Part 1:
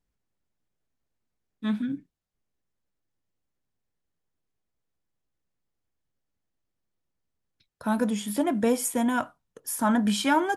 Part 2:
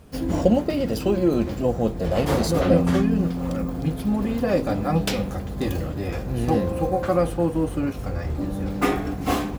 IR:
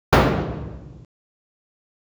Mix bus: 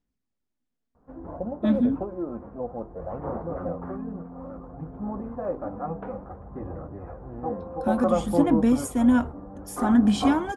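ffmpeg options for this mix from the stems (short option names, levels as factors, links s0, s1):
-filter_complex "[0:a]lowpass=9600,equalizer=f=250:t=o:w=0.51:g=11.5,volume=0.562,asplit=2[s0][s1];[1:a]lowpass=f=1300:w=0.5412,lowpass=f=1300:w=1.3066,equalizer=f=1000:w=0.61:g=9.5,dynaudnorm=f=120:g=17:m=3.76,adelay=950,volume=0.266[s2];[s1]apad=whole_len=464485[s3];[s2][s3]sidechaingate=range=0.501:threshold=0.0141:ratio=16:detection=peak[s4];[s0][s4]amix=inputs=2:normalize=0,aphaser=in_gain=1:out_gain=1:delay=4.4:decay=0.32:speed=0.59:type=sinusoidal"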